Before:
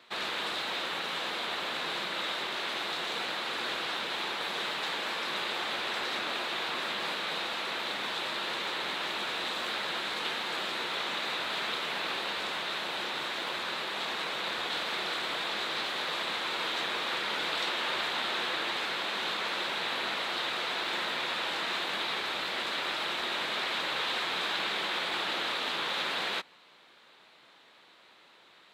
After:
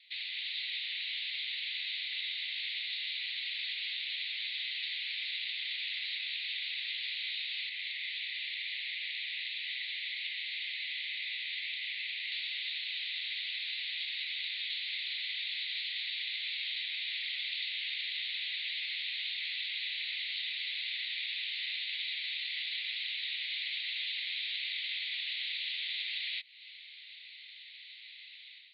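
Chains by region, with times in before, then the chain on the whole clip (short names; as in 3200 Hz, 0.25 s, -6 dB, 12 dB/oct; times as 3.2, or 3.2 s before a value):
7.69–12.32 ladder high-pass 1600 Hz, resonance 45% + echo 0.358 s -4.5 dB
whole clip: AGC gain up to 11 dB; Chebyshev band-pass 2000–4500 Hz, order 4; compressor 4:1, threshold -37 dBFS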